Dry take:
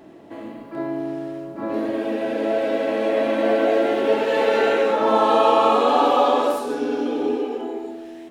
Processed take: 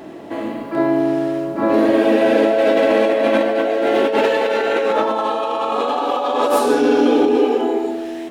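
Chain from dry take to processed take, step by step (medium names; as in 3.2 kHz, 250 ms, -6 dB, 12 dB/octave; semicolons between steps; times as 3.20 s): bass shelf 220 Hz -4.5 dB; compressor with a negative ratio -24 dBFS, ratio -1; trim +8 dB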